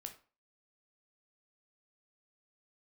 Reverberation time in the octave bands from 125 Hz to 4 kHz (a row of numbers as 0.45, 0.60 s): 0.35, 0.35, 0.35, 0.40, 0.35, 0.30 s